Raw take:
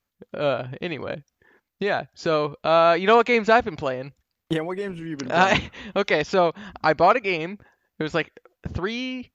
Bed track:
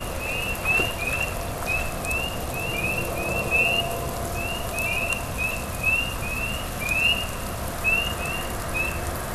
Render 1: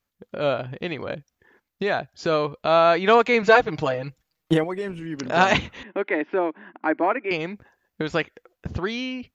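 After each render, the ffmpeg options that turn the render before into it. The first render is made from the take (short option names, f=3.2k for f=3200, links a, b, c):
-filter_complex "[0:a]asettb=1/sr,asplit=3[a][b][c];[a]atrim=end=3.424[d];[b]atrim=start=3.42:end=4.64,asetpts=PTS-STARTPTS,afade=t=in:d=0.004:c=qsin,afade=t=out:st=1.216:d=0.004:c=qsin,aecho=1:1:6.4:0.91,atrim=end_sample=53802[e];[c]atrim=start=4.636[f];[d][e]acrossfade=d=0.004:c1=hsin:c2=qsin[g];[g][f]acrossfade=d=0.004:c1=qsin:c2=hsin,asettb=1/sr,asplit=3[h][i][j];[h]atrim=end=5.834[k];[i]atrim=start=5.83:end=7.31,asetpts=PTS-STARTPTS,afade=t=in:d=0.004:c=qsin,afade=t=out:st=1.476:d=0.004:c=qsin,highpass=f=270:w=0.5412,highpass=f=270:w=1.3066,equalizer=f=310:t=q:w=4:g=8,equalizer=f=490:t=q:w=4:g=-8,equalizer=f=720:t=q:w=4:g=-6,equalizer=f=1.2k:t=q:w=4:g=-9,lowpass=f=2.1k:w=0.5412,lowpass=f=2.1k:w=1.3066[l];[j]atrim=start=7.306[m];[k][l]acrossfade=d=0.004:c1=hsin:c2=qsin[n];[n][m]acrossfade=d=0.004:c1=qsin:c2=hsin"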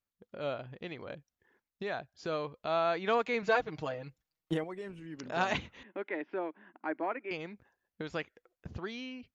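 -af "volume=-13dB"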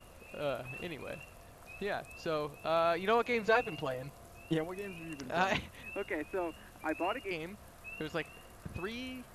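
-filter_complex "[1:a]volume=-25dB[a];[0:a][a]amix=inputs=2:normalize=0"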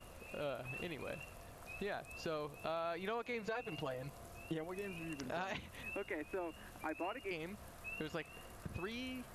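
-af "alimiter=limit=-23.5dB:level=0:latency=1:release=180,acompressor=threshold=-41dB:ratio=2.5"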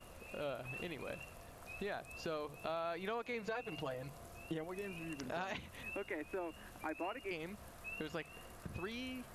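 -af "bandreject=f=50:t=h:w=6,bandreject=f=100:t=h:w=6,bandreject=f=150:t=h:w=6"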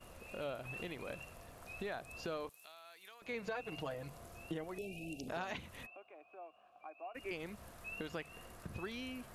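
-filter_complex "[0:a]asettb=1/sr,asplit=3[a][b][c];[a]atrim=end=2.494[d];[b]atrim=start=2.49:end=3.22,asetpts=PTS-STARTPTS,afade=t=in:d=0.004:c=qsin,afade=t=out:st=0.726:d=0.004:c=qsin,aderivative[e];[c]atrim=start=3.216[f];[d][e]acrossfade=d=0.004:c1=hsin:c2=qsin[g];[g][f]acrossfade=d=0.004:c1=qsin:c2=hsin,asettb=1/sr,asplit=3[h][i][j];[h]atrim=end=4.784[k];[i]atrim=start=4.78:end=5.28,asetpts=PTS-STARTPTS,afade=t=in:d=0.004:c=qsin,afade=t=out:st=0.496:d=0.004:c=qsin,asuperstop=centerf=1400:order=20:qfactor=0.88[l];[j]atrim=start=5.276[m];[k][l]acrossfade=d=0.004:c1=hsin:c2=qsin[n];[n][m]acrossfade=d=0.004:c1=qsin:c2=hsin,asplit=3[o][p][q];[o]afade=t=out:st=5.85:d=0.02[r];[p]asplit=3[s][t][u];[s]bandpass=f=730:t=q:w=8,volume=0dB[v];[t]bandpass=f=1.09k:t=q:w=8,volume=-6dB[w];[u]bandpass=f=2.44k:t=q:w=8,volume=-9dB[x];[v][w][x]amix=inputs=3:normalize=0,afade=t=in:st=5.85:d=0.02,afade=t=out:st=7.14:d=0.02[y];[q]afade=t=in:st=7.14:d=0.02[z];[r][y][z]amix=inputs=3:normalize=0"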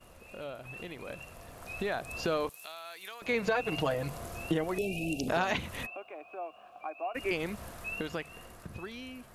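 -af "dynaudnorm=f=270:g=13:m=12dB"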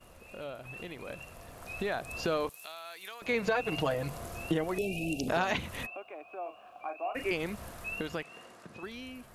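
-filter_complex "[0:a]asettb=1/sr,asplit=3[a][b][c];[a]atrim=end=6.424[d];[b]atrim=start=6.42:end=7.28,asetpts=PTS-STARTPTS,afade=t=in:d=0.004:c=qsin,afade=t=out:st=0.856:d=0.004:c=qsin,asplit=2[e][f];[f]adelay=37,volume=-7dB[g];[e][g]amix=inputs=2:normalize=0,atrim=end_sample=37926[h];[c]atrim=start=7.276[i];[d][h]acrossfade=d=0.004:c1=hsin:c2=qsin[j];[j][i]acrossfade=d=0.004:c1=qsin:c2=hsin,asettb=1/sr,asplit=3[k][l][m];[k]atrim=end=8.234[n];[l]atrim=start=8.23:end=8.83,asetpts=PTS-STARTPTS,afade=t=in:d=0.004:c=qsin,afade=t=out:st=0.596:d=0.004:c=qsin,highpass=220,lowpass=7.8k[o];[m]atrim=start=8.826[p];[n][o]acrossfade=d=0.004:c1=hsin:c2=qsin[q];[q][p]acrossfade=d=0.004:c1=qsin:c2=hsin"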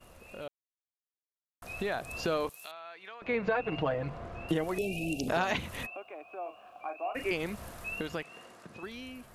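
-filter_complex "[0:a]asettb=1/sr,asplit=3[a][b][c];[a]atrim=end=2.714[d];[b]atrim=start=2.71:end=4.49,asetpts=PTS-STARTPTS,afade=t=in:d=0.004:c=qsin,afade=t=out:st=1.776:d=0.004:c=qsin,lowpass=2.4k[e];[c]atrim=start=4.486[f];[d][e]acrossfade=d=0.004:c1=hsin:c2=qsin[g];[g][f]acrossfade=d=0.004:c1=qsin:c2=hsin,asplit=3[h][i][j];[h]atrim=end=0.48,asetpts=PTS-STARTPTS,afade=t=out:st=0.476:d=0.004:c=hsin[k];[i]atrim=start=0.48:end=1.62,asetpts=PTS-STARTPTS,volume=0[l];[j]atrim=start=1.62,asetpts=PTS-STARTPTS,afade=t=in:d=0.004:c=hsin[m];[k][l][m]concat=n=3:v=0:a=1"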